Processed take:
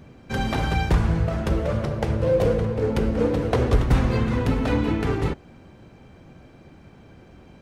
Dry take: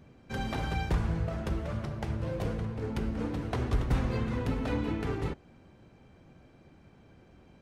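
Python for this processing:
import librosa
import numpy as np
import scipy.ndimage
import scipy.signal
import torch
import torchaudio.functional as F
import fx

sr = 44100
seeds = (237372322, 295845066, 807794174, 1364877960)

y = fx.peak_eq(x, sr, hz=500.0, db=10.5, octaves=0.41, at=(1.49, 3.78))
y = y * 10.0 ** (9.0 / 20.0)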